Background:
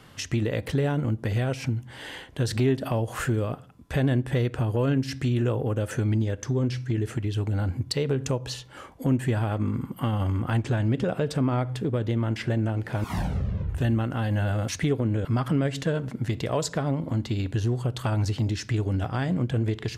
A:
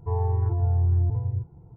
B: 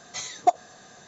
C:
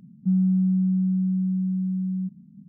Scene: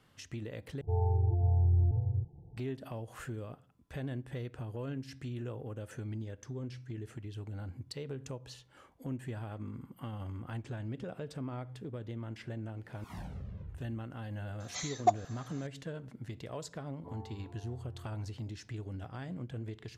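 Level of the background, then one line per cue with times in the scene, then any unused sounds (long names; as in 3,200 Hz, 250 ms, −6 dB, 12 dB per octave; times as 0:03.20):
background −15.5 dB
0:00.81: overwrite with A −4.5 dB + Chebyshev low-pass filter 880 Hz, order 10
0:14.60: mix in B −6 dB
0:16.98: mix in A −16 dB + high-pass filter 370 Hz 6 dB per octave
not used: C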